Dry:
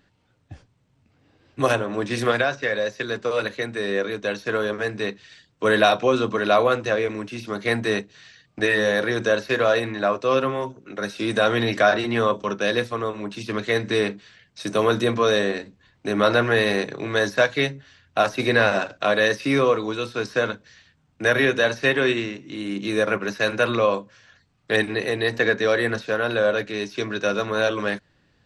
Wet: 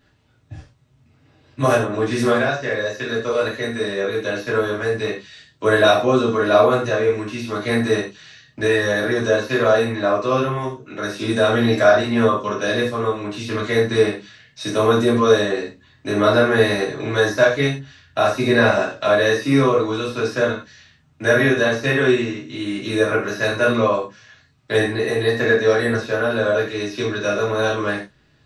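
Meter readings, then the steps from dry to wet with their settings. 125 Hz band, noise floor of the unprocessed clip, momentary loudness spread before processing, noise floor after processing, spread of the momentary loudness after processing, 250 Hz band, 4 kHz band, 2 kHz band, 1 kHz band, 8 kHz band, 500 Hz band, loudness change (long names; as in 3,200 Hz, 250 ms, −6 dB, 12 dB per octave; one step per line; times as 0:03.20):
+6.5 dB, −64 dBFS, 9 LU, −57 dBFS, 10 LU, +5.0 dB, +1.5 dB, +1.5 dB, +2.5 dB, +3.5 dB, +4.0 dB, +3.5 dB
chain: dynamic equaliser 2,900 Hz, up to −7 dB, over −36 dBFS, Q 0.84
reverb whose tail is shaped and stops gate 140 ms falling, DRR −6.5 dB
level −2.5 dB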